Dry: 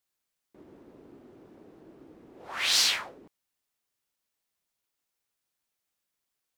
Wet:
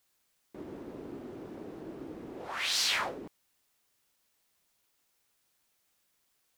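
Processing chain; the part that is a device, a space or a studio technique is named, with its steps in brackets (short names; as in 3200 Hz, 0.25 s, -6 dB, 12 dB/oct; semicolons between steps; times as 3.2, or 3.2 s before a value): compression on the reversed sound (reverse; compressor 4:1, threshold -39 dBFS, peak gain reduction 16 dB; reverse); gain +9 dB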